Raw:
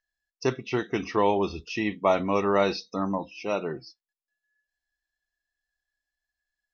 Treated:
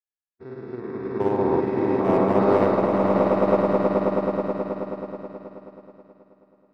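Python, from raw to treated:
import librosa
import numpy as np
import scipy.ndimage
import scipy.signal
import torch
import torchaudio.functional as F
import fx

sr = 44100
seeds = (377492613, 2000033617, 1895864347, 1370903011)

p1 = fx.spec_steps(x, sr, hold_ms=400)
p2 = fx.low_shelf(p1, sr, hz=66.0, db=-7.0)
p3 = fx.hpss(p2, sr, part='percussive', gain_db=-4)
p4 = fx.level_steps(p3, sr, step_db=19)
p5 = p3 + (p4 * 10.0 ** (-2.0 / 20.0))
p6 = np.convolve(p5, np.full(15, 1.0 / 15))[:len(p5)]
p7 = np.clip(10.0 ** (17.5 / 20.0) * p6, -1.0, 1.0) / 10.0 ** (17.5 / 20.0)
p8 = p7 + fx.echo_swell(p7, sr, ms=107, loudest=8, wet_db=-7.5, dry=0)
p9 = fx.rev_spring(p8, sr, rt60_s=2.9, pass_ms=(42, 60), chirp_ms=35, drr_db=10.5)
p10 = fx.upward_expand(p9, sr, threshold_db=-39.0, expansion=2.5)
y = p10 * 10.0 ** (7.0 / 20.0)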